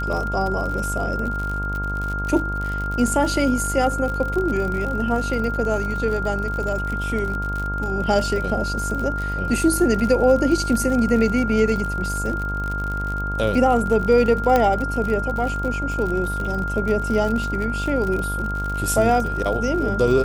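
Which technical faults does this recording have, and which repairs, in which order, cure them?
buzz 50 Hz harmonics 31 -27 dBFS
crackle 59/s -26 dBFS
tone 1400 Hz -26 dBFS
14.56 pop -6 dBFS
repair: de-click; de-hum 50 Hz, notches 31; notch 1400 Hz, Q 30

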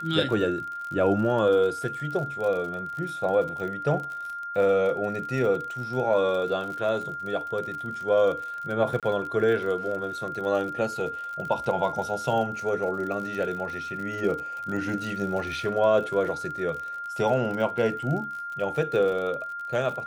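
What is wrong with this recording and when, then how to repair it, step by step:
crackle 48/s -33 dBFS
tone 1400 Hz -32 dBFS
9–9.03 gap 27 ms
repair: de-click; notch 1400 Hz, Q 30; interpolate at 9, 27 ms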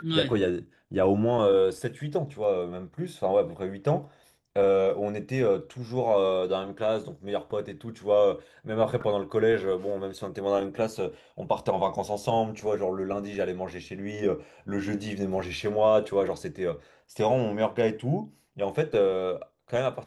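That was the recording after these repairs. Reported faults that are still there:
none

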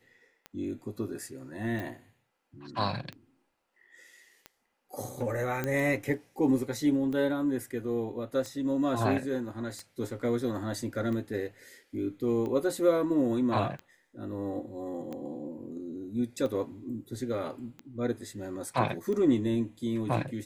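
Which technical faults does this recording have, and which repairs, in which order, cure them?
tick 45 rpm -26 dBFS
1.8 pop
5.64 pop -17 dBFS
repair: de-click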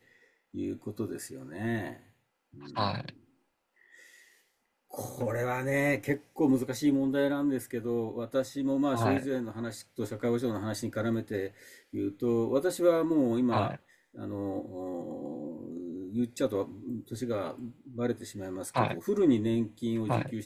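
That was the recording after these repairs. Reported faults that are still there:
none

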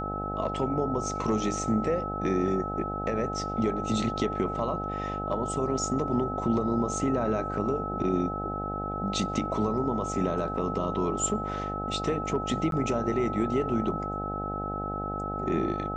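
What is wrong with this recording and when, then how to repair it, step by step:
buzz 50 Hz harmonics 17 -35 dBFS
tone 1300 Hz -33 dBFS
12.71–12.72 gap 12 ms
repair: de-hum 50 Hz, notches 17; notch 1300 Hz, Q 30; interpolate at 12.71, 12 ms

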